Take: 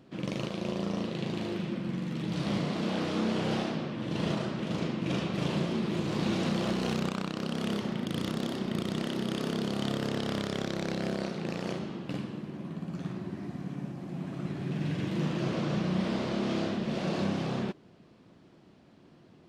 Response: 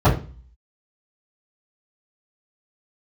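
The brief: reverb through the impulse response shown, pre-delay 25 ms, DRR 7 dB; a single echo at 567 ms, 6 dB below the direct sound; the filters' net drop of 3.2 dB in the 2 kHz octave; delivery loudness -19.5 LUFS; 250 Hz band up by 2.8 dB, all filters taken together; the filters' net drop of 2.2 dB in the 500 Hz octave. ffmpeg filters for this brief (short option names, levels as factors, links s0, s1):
-filter_complex "[0:a]equalizer=f=250:t=o:g=5,equalizer=f=500:t=o:g=-5,equalizer=f=2000:t=o:g=-4,aecho=1:1:567:0.501,asplit=2[s0][s1];[1:a]atrim=start_sample=2205,adelay=25[s2];[s1][s2]afir=irnorm=-1:irlink=0,volume=0.0355[s3];[s0][s3]amix=inputs=2:normalize=0,volume=2.11"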